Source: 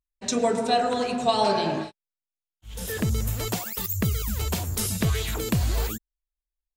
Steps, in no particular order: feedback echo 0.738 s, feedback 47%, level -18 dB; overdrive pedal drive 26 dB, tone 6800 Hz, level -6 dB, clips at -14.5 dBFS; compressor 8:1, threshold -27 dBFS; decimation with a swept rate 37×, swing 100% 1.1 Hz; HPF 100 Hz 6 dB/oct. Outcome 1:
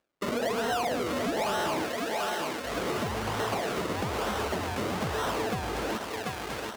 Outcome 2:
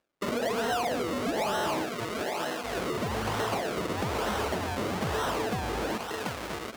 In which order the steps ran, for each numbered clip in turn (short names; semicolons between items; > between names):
decimation with a swept rate > feedback echo > overdrive pedal > compressor > HPF; feedback echo > decimation with a swept rate > overdrive pedal > HPF > compressor